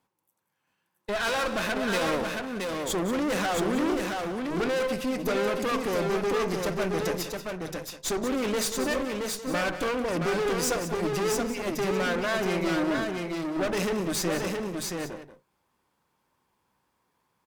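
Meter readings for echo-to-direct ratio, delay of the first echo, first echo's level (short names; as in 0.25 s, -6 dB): -3.0 dB, 0.184 s, -12.0 dB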